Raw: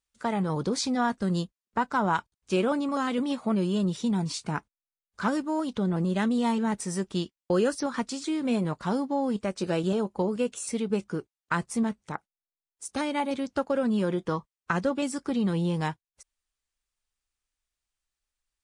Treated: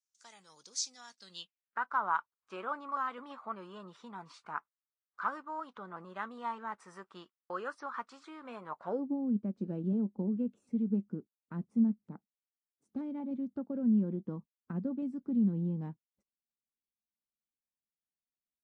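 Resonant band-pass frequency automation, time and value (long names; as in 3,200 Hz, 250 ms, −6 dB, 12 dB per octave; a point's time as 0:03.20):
resonant band-pass, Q 3.3
0:01.08 6,100 Hz
0:01.88 1,200 Hz
0:08.67 1,200 Hz
0:09.17 220 Hz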